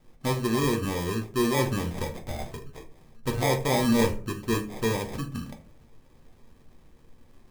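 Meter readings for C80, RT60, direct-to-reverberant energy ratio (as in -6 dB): 17.0 dB, 0.45 s, 3.0 dB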